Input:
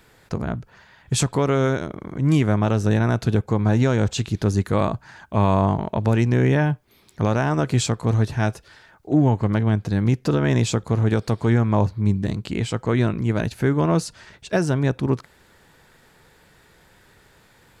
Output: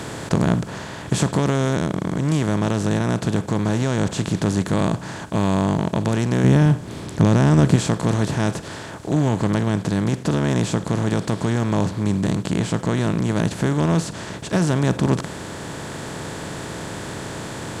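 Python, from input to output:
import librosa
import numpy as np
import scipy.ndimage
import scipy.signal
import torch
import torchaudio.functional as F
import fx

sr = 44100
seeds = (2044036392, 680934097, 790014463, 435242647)

y = fx.bin_compress(x, sr, power=0.4)
y = fx.dynamic_eq(y, sr, hz=180.0, q=2.8, threshold_db=-34.0, ratio=4.0, max_db=8)
y = fx.rider(y, sr, range_db=4, speed_s=2.0)
y = fx.low_shelf(y, sr, hz=300.0, db=8.0, at=(6.44, 7.76))
y = y * librosa.db_to_amplitude(-7.5)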